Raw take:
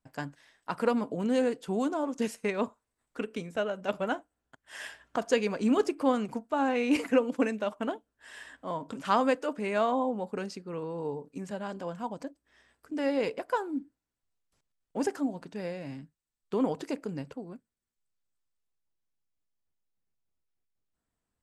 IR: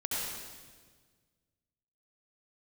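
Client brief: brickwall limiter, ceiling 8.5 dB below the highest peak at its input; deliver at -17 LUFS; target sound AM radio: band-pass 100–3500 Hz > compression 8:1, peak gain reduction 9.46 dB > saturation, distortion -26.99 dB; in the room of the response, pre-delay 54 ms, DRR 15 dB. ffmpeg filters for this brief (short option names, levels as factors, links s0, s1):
-filter_complex "[0:a]alimiter=limit=0.0944:level=0:latency=1,asplit=2[s0][s1];[1:a]atrim=start_sample=2205,adelay=54[s2];[s1][s2]afir=irnorm=-1:irlink=0,volume=0.0944[s3];[s0][s3]amix=inputs=2:normalize=0,highpass=100,lowpass=3500,acompressor=threshold=0.0224:ratio=8,asoftclip=threshold=0.0668,volume=14.1"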